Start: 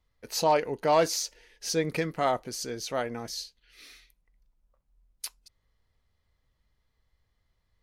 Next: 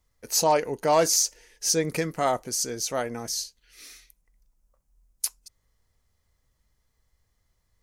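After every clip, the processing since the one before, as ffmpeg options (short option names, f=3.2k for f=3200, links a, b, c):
-af "highshelf=f=5k:t=q:w=1.5:g=7.5,volume=2dB"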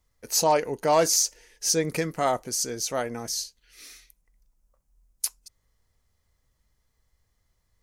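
-af anull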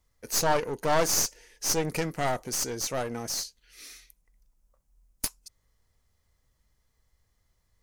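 -af "aeval=exprs='clip(val(0),-1,0.0282)':c=same"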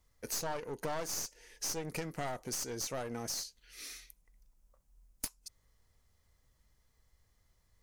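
-af "acompressor=threshold=-36dB:ratio=4"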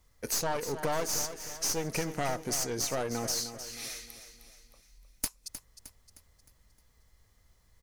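-af "aecho=1:1:309|618|927|1236|1545:0.282|0.13|0.0596|0.0274|0.0126,volume=6dB"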